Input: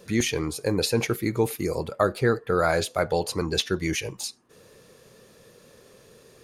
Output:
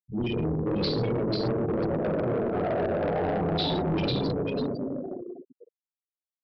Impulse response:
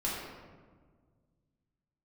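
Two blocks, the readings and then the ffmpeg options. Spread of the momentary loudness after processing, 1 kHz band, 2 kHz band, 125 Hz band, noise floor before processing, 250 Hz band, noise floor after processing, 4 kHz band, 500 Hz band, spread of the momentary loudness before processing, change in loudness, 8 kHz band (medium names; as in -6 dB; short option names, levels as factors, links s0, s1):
7 LU, -2.0 dB, -9.0 dB, +0.5 dB, -55 dBFS, +1.0 dB, under -85 dBFS, -3.5 dB, -1.5 dB, 6 LU, -2.0 dB, under -30 dB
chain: -filter_complex "[0:a]afwtdn=0.0355,areverse,acompressor=threshold=0.0158:ratio=10,areverse,equalizer=f=160:t=o:w=0.67:g=8,equalizer=f=630:t=o:w=0.67:g=6,equalizer=f=1600:t=o:w=0.67:g=-10,equalizer=f=4000:t=o:w=0.67:g=10,asplit=6[s0][s1][s2][s3][s4][s5];[s1]adelay=495,afreqshift=110,volume=0.631[s6];[s2]adelay=990,afreqshift=220,volume=0.226[s7];[s3]adelay=1485,afreqshift=330,volume=0.0822[s8];[s4]adelay=1980,afreqshift=440,volume=0.0295[s9];[s5]adelay=2475,afreqshift=550,volume=0.0106[s10];[s0][s6][s7][s8][s9][s10]amix=inputs=6:normalize=0[s11];[1:a]atrim=start_sample=2205[s12];[s11][s12]afir=irnorm=-1:irlink=0,afftfilt=real='re*gte(hypot(re,im),0.0355)':imag='im*gte(hypot(re,im),0.0355)':win_size=1024:overlap=0.75,tremolo=f=100:d=0.462,aresample=11025,asoftclip=type=tanh:threshold=0.0266,aresample=44100,volume=2.66"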